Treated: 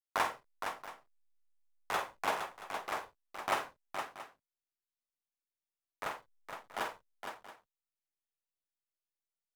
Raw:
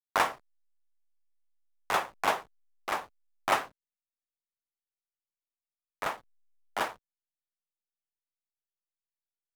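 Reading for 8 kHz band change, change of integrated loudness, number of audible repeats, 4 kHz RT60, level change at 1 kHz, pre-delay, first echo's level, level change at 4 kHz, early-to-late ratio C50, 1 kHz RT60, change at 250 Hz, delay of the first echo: −5.0 dB, −7.0 dB, 3, no reverb audible, −5.0 dB, no reverb audible, −8.0 dB, −5.0 dB, no reverb audible, no reverb audible, −5.0 dB, 47 ms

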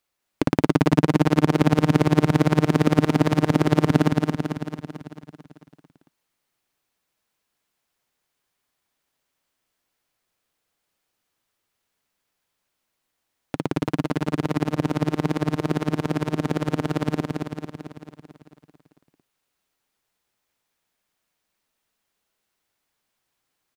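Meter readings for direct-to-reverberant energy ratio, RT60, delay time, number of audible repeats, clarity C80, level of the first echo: no reverb audible, no reverb audible, 222 ms, 8, no reverb audible, −3.5 dB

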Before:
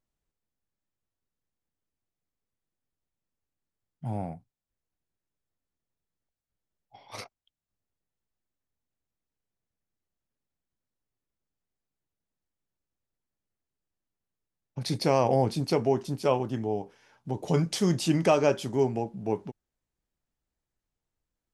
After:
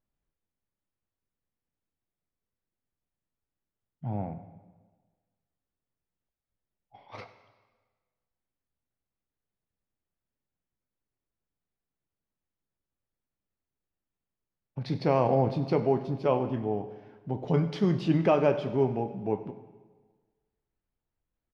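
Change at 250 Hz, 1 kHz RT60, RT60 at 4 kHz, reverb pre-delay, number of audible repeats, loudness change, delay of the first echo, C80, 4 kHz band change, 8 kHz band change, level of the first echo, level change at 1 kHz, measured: 0.0 dB, 1.4 s, 1.3 s, 5 ms, 1, −0.5 dB, 97 ms, 12.5 dB, −9.0 dB, below −20 dB, −19.5 dB, −1.0 dB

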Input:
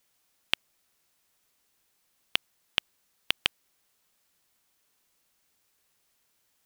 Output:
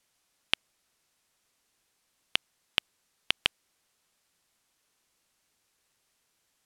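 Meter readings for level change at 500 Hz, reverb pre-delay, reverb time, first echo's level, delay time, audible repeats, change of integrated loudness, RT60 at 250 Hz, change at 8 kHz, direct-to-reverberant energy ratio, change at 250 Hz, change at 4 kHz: 0.0 dB, no reverb audible, no reverb audible, no echo audible, no echo audible, no echo audible, 0.0 dB, no reverb audible, −1.0 dB, no reverb audible, 0.0 dB, 0.0 dB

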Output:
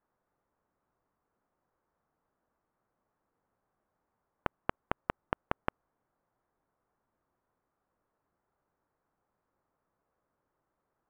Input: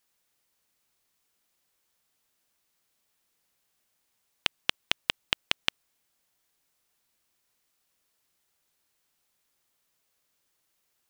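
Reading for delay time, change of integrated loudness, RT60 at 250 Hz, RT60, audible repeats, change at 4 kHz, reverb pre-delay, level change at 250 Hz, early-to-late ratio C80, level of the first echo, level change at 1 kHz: no echo audible, −9.0 dB, no reverb audible, no reverb audible, no echo audible, −25.5 dB, no reverb audible, +5.0 dB, no reverb audible, no echo audible, +4.0 dB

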